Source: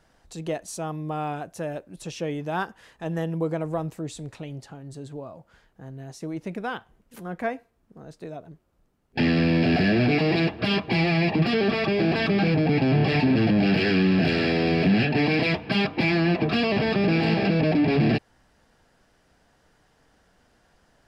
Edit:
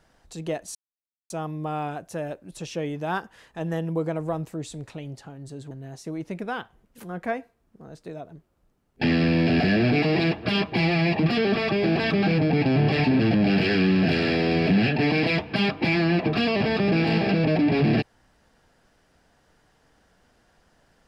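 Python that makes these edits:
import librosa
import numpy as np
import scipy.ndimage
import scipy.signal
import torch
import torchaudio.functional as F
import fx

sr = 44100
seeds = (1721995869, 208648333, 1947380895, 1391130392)

y = fx.edit(x, sr, fx.insert_silence(at_s=0.75, length_s=0.55),
    fx.cut(start_s=5.16, length_s=0.71), tone=tone)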